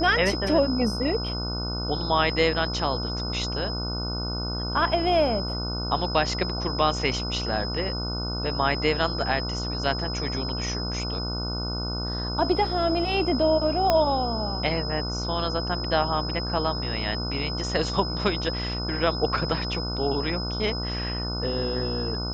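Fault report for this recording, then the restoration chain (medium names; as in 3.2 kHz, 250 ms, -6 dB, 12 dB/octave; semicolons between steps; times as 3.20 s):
buzz 60 Hz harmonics 25 -31 dBFS
whine 5.1 kHz -32 dBFS
13.90 s: pop -7 dBFS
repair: de-click; band-stop 5.1 kHz, Q 30; de-hum 60 Hz, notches 25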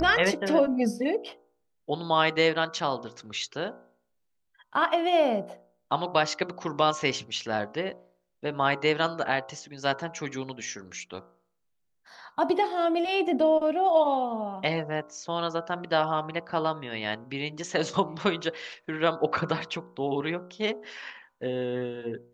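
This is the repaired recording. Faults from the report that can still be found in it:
13.90 s: pop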